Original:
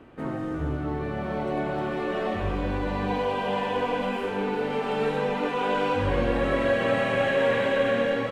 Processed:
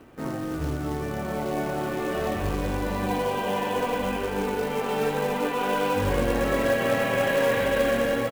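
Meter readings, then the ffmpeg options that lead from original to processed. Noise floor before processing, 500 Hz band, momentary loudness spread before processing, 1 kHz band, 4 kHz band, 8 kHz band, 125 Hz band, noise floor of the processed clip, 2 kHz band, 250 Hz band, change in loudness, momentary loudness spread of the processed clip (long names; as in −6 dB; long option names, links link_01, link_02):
−31 dBFS, +0.5 dB, 7 LU, +0.5 dB, +1.0 dB, can't be measured, +0.5 dB, −31 dBFS, 0.0 dB, +0.5 dB, +0.5 dB, 7 LU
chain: -filter_complex "[0:a]asplit=2[link_01][link_02];[link_02]adelay=1574,volume=-10dB,highshelf=frequency=4000:gain=-35.4[link_03];[link_01][link_03]amix=inputs=2:normalize=0,acrusher=bits=4:mode=log:mix=0:aa=0.000001"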